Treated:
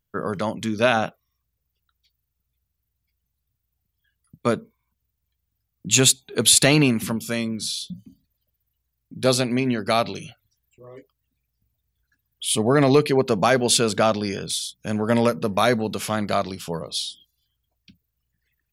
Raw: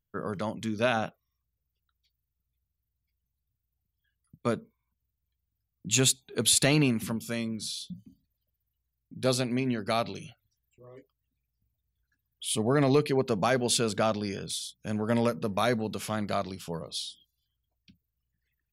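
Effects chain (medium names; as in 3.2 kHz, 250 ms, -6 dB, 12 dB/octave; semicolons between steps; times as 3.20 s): bass shelf 210 Hz -3.5 dB; trim +8 dB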